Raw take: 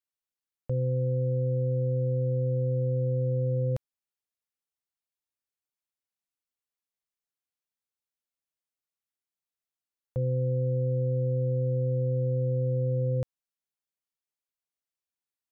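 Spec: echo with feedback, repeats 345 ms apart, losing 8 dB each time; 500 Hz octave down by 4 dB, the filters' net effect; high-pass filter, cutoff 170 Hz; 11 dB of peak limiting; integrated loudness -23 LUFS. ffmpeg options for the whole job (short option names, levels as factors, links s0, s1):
-af "highpass=170,equalizer=f=500:t=o:g=-4,alimiter=level_in=3.55:limit=0.0631:level=0:latency=1,volume=0.282,aecho=1:1:345|690|1035|1380|1725:0.398|0.159|0.0637|0.0255|0.0102,volume=9.44"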